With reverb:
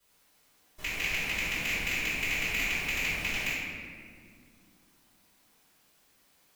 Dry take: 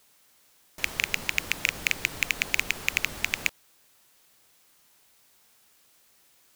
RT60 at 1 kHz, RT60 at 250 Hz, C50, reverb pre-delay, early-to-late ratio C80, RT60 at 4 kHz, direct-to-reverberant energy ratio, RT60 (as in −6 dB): 1.7 s, 3.7 s, −2.5 dB, 3 ms, 0.0 dB, 1.2 s, −15.0 dB, 2.1 s